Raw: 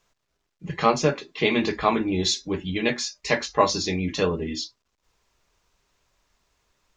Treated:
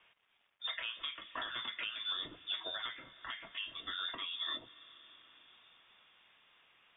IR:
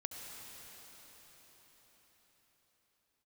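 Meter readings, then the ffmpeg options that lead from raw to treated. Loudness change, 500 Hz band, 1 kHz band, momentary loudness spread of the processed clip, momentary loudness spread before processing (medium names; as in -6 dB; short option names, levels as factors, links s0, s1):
-15.5 dB, -31.0 dB, -21.0 dB, 18 LU, 9 LU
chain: -filter_complex "[0:a]highpass=f=630:p=1,acompressor=threshold=0.0112:ratio=6,asplit=2[s0][s1];[1:a]atrim=start_sample=2205[s2];[s1][s2]afir=irnorm=-1:irlink=0,volume=0.188[s3];[s0][s3]amix=inputs=2:normalize=0,alimiter=level_in=3.35:limit=0.0631:level=0:latency=1:release=289,volume=0.299,lowpass=f=3200:t=q:w=0.5098,lowpass=f=3200:t=q:w=0.6013,lowpass=f=3200:t=q:w=0.9,lowpass=f=3200:t=q:w=2.563,afreqshift=-3800,volume=2.11"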